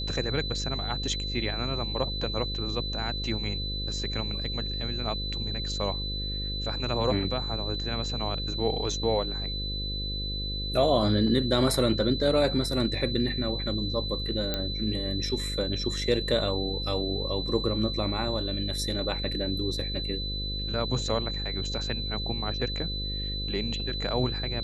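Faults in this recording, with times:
buzz 50 Hz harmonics 11 -34 dBFS
whine 4 kHz -33 dBFS
14.54 s: pop -14 dBFS

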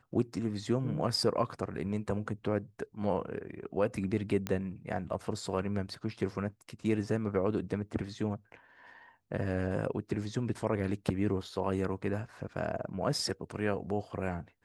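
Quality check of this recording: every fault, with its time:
4.47 s: pop -18 dBFS

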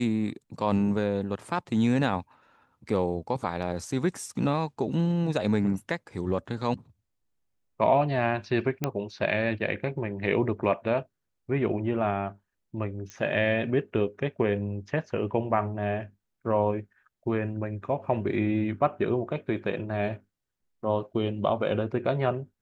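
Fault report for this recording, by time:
8.84 s: pop -12 dBFS
13.10 s: pop -24 dBFS

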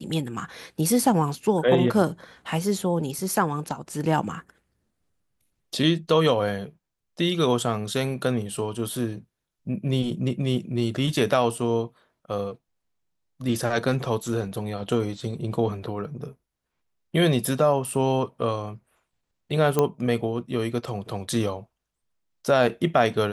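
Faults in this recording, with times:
19.79 s: pop -8 dBFS

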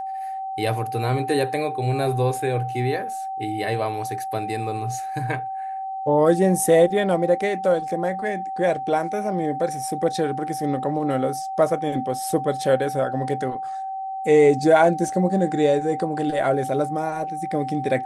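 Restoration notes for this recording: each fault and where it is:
whine 770 Hz -27 dBFS

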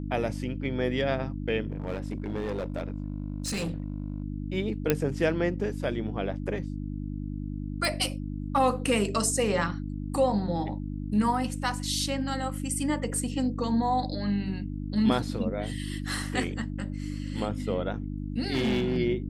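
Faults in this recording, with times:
hum 50 Hz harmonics 6 -34 dBFS
1.70–4.22 s: clipped -27 dBFS
4.90 s: pop -8 dBFS
7.85 s: pop -14 dBFS
18.52–18.98 s: clipped -22 dBFS

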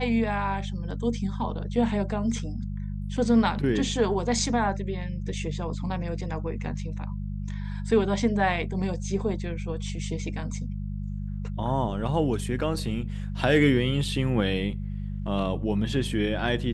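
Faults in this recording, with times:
hum 50 Hz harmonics 4 -32 dBFS

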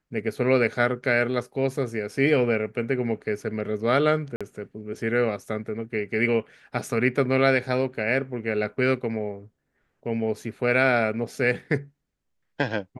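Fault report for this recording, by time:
4.36–4.41 s: dropout 46 ms

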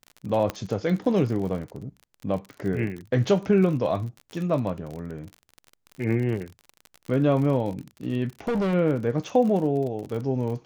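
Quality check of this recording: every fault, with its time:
crackle 44 per s -32 dBFS
0.50 s: pop -13 dBFS
8.48–8.74 s: clipped -22 dBFS

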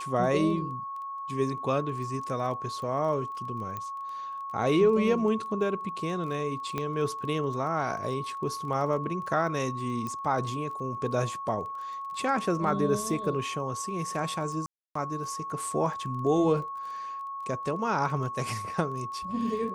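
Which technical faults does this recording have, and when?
crackle 18 per s -38 dBFS
whine 1.1 kHz -34 dBFS
3.77 s: pop -22 dBFS
6.78 s: pop -17 dBFS
10.07 s: pop -22 dBFS
14.66–14.95 s: dropout 294 ms

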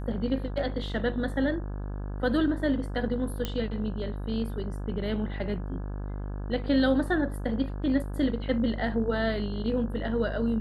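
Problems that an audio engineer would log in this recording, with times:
buzz 50 Hz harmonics 34 -34 dBFS
3.45 s: pop -15 dBFS

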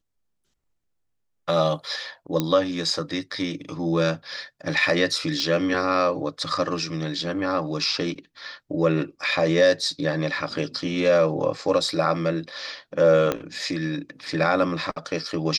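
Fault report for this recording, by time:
2.40 s: pop -9 dBFS
5.40 s: pop -13 dBFS
13.32 s: pop -9 dBFS

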